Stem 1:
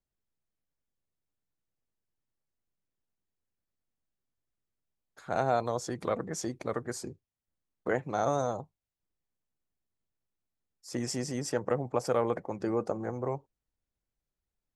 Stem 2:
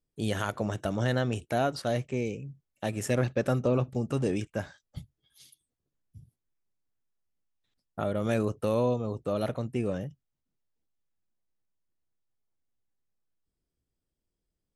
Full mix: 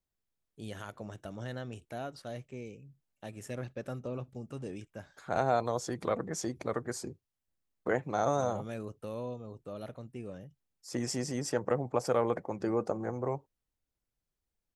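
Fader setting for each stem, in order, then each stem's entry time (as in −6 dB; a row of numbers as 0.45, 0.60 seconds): −0.5, −12.5 decibels; 0.00, 0.40 seconds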